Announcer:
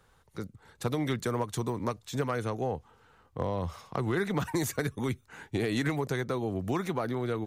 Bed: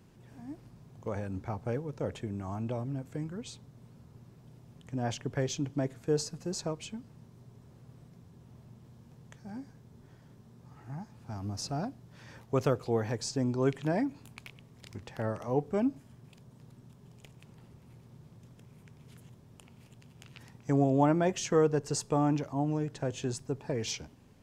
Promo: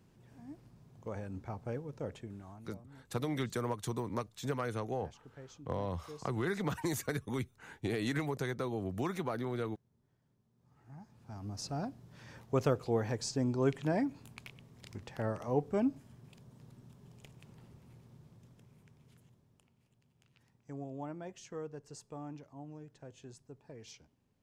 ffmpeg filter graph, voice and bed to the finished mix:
ffmpeg -i stem1.wav -i stem2.wav -filter_complex "[0:a]adelay=2300,volume=-5dB[link_01];[1:a]volume=12.5dB,afade=type=out:start_time=2.03:duration=0.64:silence=0.188365,afade=type=in:start_time=10.53:duration=1.49:silence=0.125893,afade=type=out:start_time=17.63:duration=2.13:silence=0.16788[link_02];[link_01][link_02]amix=inputs=2:normalize=0" out.wav

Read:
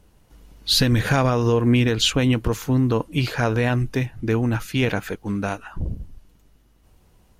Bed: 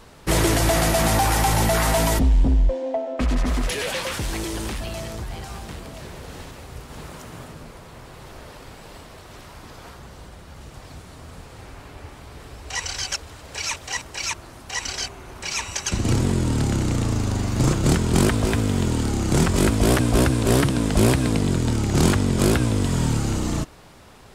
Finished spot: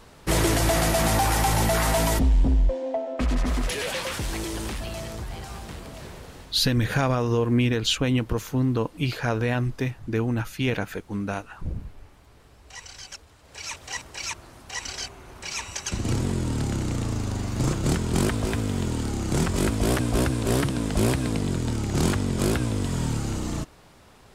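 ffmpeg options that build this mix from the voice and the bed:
ffmpeg -i stem1.wav -i stem2.wav -filter_complex "[0:a]adelay=5850,volume=-4dB[link_01];[1:a]volume=6dB,afade=type=out:start_time=6.07:duration=0.55:silence=0.281838,afade=type=in:start_time=13.4:duration=0.5:silence=0.375837[link_02];[link_01][link_02]amix=inputs=2:normalize=0" out.wav

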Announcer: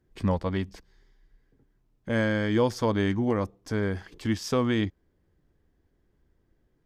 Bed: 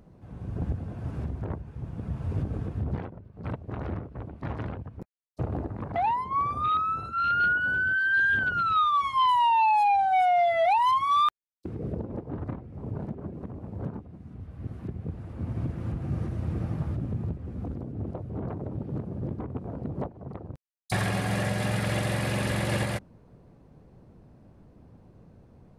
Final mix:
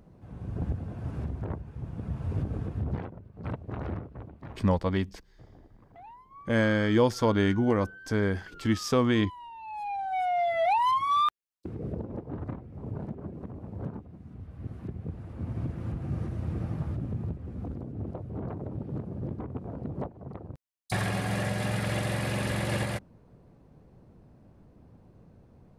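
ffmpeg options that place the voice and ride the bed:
ffmpeg -i stem1.wav -i stem2.wav -filter_complex "[0:a]adelay=4400,volume=1dB[link_01];[1:a]volume=20dB,afade=type=out:start_time=3.9:duration=0.85:silence=0.0794328,afade=type=in:start_time=9.62:duration=1.09:silence=0.0891251[link_02];[link_01][link_02]amix=inputs=2:normalize=0" out.wav

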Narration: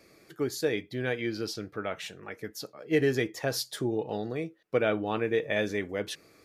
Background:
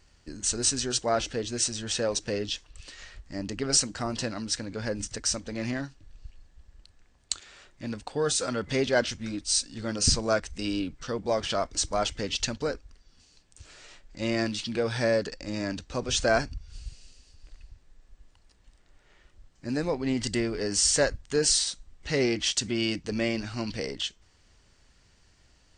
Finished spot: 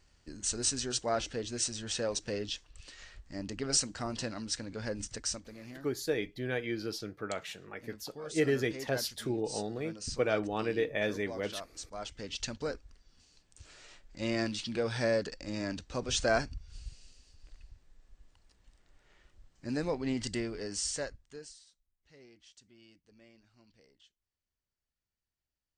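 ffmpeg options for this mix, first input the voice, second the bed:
ffmpeg -i stem1.wav -i stem2.wav -filter_complex "[0:a]adelay=5450,volume=-3.5dB[link_01];[1:a]volume=6.5dB,afade=type=out:start_time=5.2:duration=0.38:silence=0.281838,afade=type=in:start_time=11.9:duration=0.98:silence=0.251189,afade=type=out:start_time=19.97:duration=1.57:silence=0.0421697[link_02];[link_01][link_02]amix=inputs=2:normalize=0" out.wav

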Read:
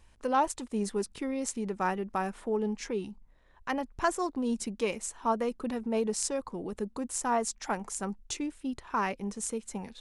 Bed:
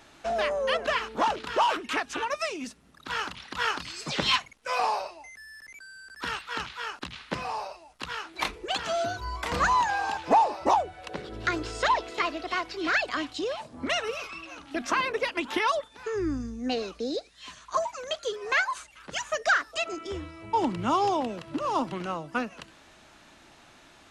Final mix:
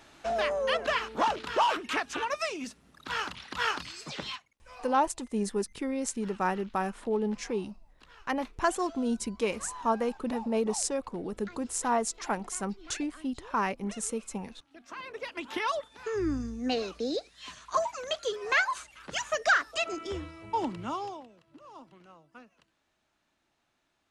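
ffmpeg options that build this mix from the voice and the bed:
ffmpeg -i stem1.wav -i stem2.wav -filter_complex "[0:a]adelay=4600,volume=1dB[link_01];[1:a]volume=19dB,afade=type=out:start_time=3.74:duration=0.66:silence=0.105925,afade=type=in:start_time=14.86:duration=1.43:silence=0.0944061,afade=type=out:start_time=20.11:duration=1.16:silence=0.0841395[link_02];[link_01][link_02]amix=inputs=2:normalize=0" out.wav

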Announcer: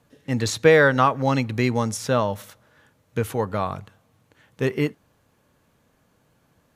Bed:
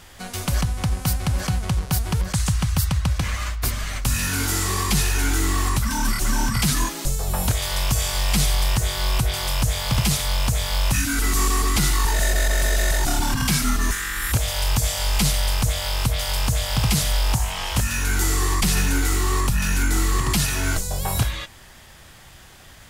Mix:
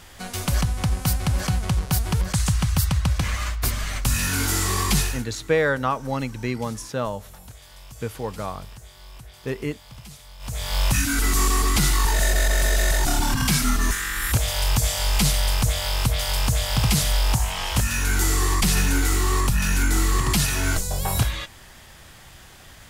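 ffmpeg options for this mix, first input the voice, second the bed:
ffmpeg -i stem1.wav -i stem2.wav -filter_complex "[0:a]adelay=4850,volume=-5.5dB[link_01];[1:a]volume=22dB,afade=type=out:start_time=4.96:duration=0.29:silence=0.0794328,afade=type=in:start_time=10.39:duration=0.43:silence=0.0794328[link_02];[link_01][link_02]amix=inputs=2:normalize=0" out.wav

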